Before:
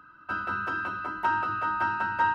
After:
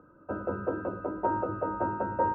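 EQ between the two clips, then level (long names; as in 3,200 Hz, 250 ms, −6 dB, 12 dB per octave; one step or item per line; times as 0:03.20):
low-pass with resonance 520 Hz, resonance Q 4.9
+4.0 dB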